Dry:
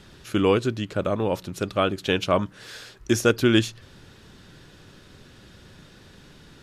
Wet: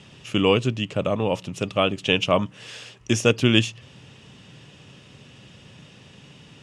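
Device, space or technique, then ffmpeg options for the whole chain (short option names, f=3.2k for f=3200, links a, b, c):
car door speaker: -af "highpass=100,equalizer=f=130:t=q:w=4:g=6,equalizer=f=350:t=q:w=4:g=-6,equalizer=f=1.5k:t=q:w=4:g=-9,equalizer=f=2.8k:t=q:w=4:g=9,equalizer=f=4.2k:t=q:w=4:g=-7,lowpass=f=9.1k:w=0.5412,lowpass=f=9.1k:w=1.3066,volume=2dB"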